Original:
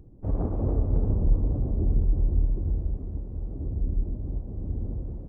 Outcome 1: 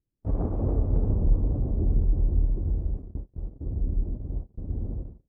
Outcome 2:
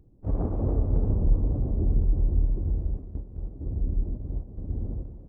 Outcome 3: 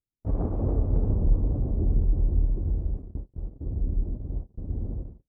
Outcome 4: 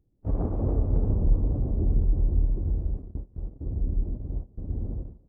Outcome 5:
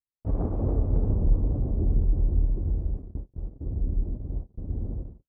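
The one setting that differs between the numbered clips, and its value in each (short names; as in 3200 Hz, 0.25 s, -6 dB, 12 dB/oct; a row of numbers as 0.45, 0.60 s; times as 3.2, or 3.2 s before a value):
gate, range: -35, -7, -47, -20, -60 dB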